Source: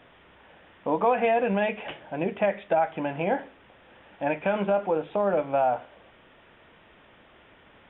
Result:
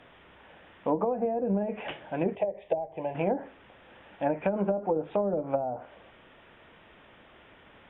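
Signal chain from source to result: low-pass that closes with the level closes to 420 Hz, closed at -20 dBFS; 2.35–3.15 s: static phaser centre 570 Hz, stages 4

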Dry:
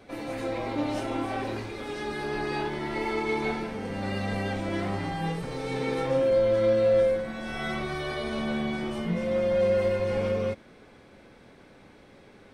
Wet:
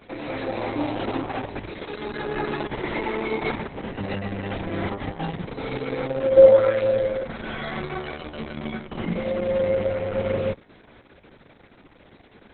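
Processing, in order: 6.36–6.81 s: peaking EQ 400 Hz -> 2.5 kHz +12 dB 1.2 oct; trim +3 dB; Opus 6 kbps 48 kHz

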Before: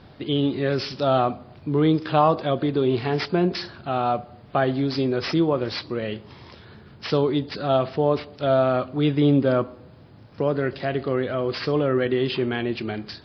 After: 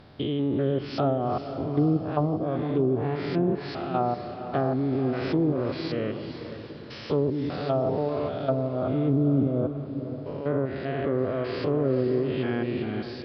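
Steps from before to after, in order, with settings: spectrogram pixelated in time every 200 ms; low-pass that closes with the level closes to 340 Hz, closed at -16.5 dBFS; echo that smears into a reverb 500 ms, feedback 44%, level -9.5 dB; trim -1 dB

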